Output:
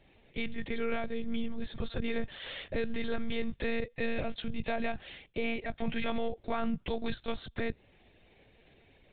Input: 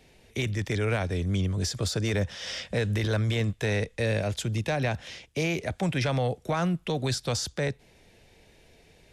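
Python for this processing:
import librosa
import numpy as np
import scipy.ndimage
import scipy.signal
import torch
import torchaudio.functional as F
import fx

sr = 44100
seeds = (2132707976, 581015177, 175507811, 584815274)

y = fx.lpc_monotone(x, sr, seeds[0], pitch_hz=230.0, order=16)
y = y * 10.0 ** (-4.5 / 20.0)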